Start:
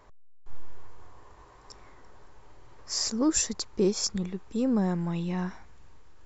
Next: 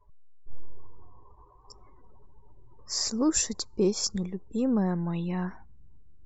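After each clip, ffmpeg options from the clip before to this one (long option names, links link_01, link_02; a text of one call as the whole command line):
ffmpeg -i in.wav -af "afftdn=noise_reduction=28:noise_floor=-49" out.wav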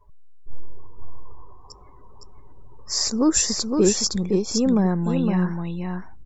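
ffmpeg -i in.wav -af "aecho=1:1:512:0.596,volume=6dB" out.wav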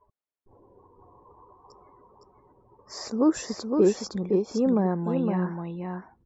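ffmpeg -i in.wav -af "bandpass=frequency=570:width_type=q:width=0.61:csg=0" out.wav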